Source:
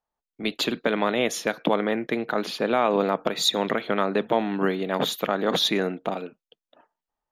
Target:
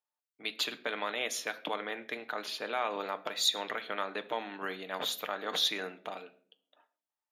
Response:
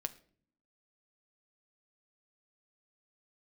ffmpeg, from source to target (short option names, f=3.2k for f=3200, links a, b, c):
-filter_complex "[0:a]highpass=f=1.5k:p=1[a];[1:a]atrim=start_sample=2205[b];[a][b]afir=irnorm=-1:irlink=0,volume=-3.5dB"